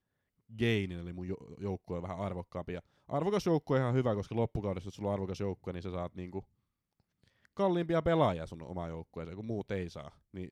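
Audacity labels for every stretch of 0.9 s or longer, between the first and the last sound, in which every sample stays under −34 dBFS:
6.390000	7.590000	silence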